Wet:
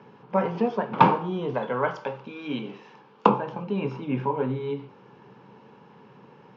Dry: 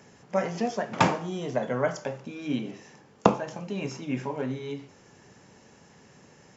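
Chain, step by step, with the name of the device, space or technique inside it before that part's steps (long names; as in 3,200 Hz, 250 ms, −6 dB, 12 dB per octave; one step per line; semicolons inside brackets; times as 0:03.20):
0:01.54–0:03.29: spectral tilt +2.5 dB per octave
overdrive pedal into a guitar cabinet (mid-hump overdrive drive 12 dB, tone 1,200 Hz, clips at −1 dBFS; loudspeaker in its box 110–3,900 Hz, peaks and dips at 130 Hz +9 dB, 200 Hz +6 dB, 440 Hz +4 dB, 660 Hz −10 dB, 940 Hz +6 dB, 1,900 Hz −10 dB)
level +1.5 dB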